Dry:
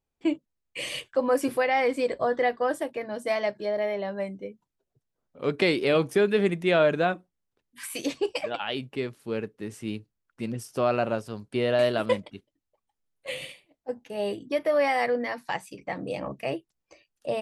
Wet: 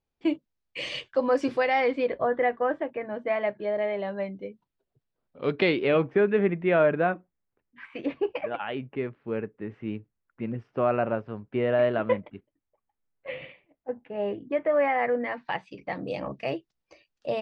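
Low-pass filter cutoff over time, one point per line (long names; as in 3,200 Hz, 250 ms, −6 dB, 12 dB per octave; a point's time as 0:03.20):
low-pass filter 24 dB per octave
0:01.69 5,600 Hz
0:02.27 2,500 Hz
0:03.36 2,500 Hz
0:04.41 4,400 Hz
0:05.50 4,400 Hz
0:06.10 2,300 Hz
0:15.06 2,300 Hz
0:16.05 5,600 Hz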